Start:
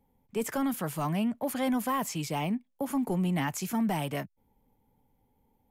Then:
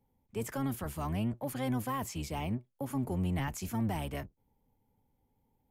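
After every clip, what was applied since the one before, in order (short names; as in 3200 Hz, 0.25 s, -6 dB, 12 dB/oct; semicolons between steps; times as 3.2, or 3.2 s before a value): octaver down 1 oct, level -1 dB; gain -6 dB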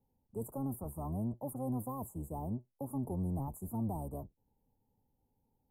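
inverse Chebyshev band-stop 1600–5800 Hz, stop band 40 dB; gain -3.5 dB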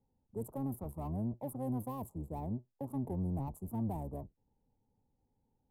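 Wiener smoothing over 15 samples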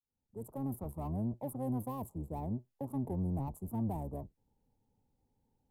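opening faded in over 0.73 s; gain +1 dB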